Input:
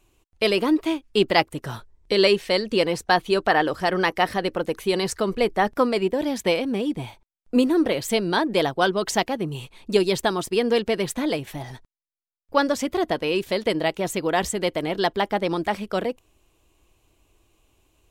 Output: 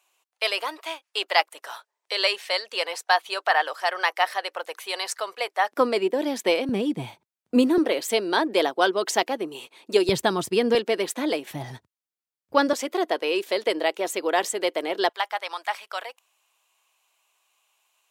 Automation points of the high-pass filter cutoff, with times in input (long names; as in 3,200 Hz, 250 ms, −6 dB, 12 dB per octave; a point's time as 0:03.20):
high-pass filter 24 dB per octave
650 Hz
from 0:05.72 270 Hz
from 0:06.69 120 Hz
from 0:07.78 290 Hz
from 0:10.09 97 Hz
from 0:10.75 270 Hz
from 0:11.51 91 Hz
from 0:12.73 340 Hz
from 0:15.09 790 Hz